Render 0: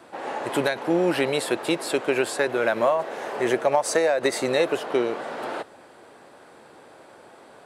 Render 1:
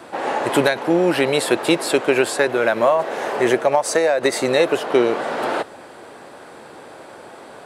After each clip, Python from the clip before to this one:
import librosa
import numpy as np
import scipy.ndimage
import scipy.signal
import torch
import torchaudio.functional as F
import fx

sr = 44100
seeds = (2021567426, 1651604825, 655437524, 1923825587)

y = fx.rider(x, sr, range_db=3, speed_s=0.5)
y = y * 10.0 ** (6.0 / 20.0)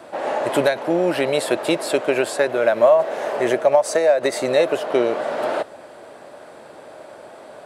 y = fx.peak_eq(x, sr, hz=610.0, db=10.0, octaves=0.29)
y = y * 10.0 ** (-4.0 / 20.0)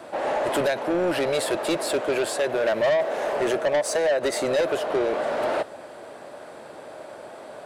y = 10.0 ** (-18.0 / 20.0) * np.tanh(x / 10.0 ** (-18.0 / 20.0))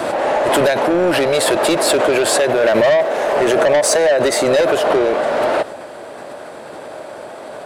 y = fx.pre_swell(x, sr, db_per_s=26.0)
y = y * 10.0 ** (8.0 / 20.0)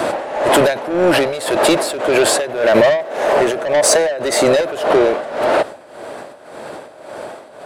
y = x * (1.0 - 0.78 / 2.0 + 0.78 / 2.0 * np.cos(2.0 * np.pi * 1.8 * (np.arange(len(x)) / sr)))
y = y * 10.0 ** (3.0 / 20.0)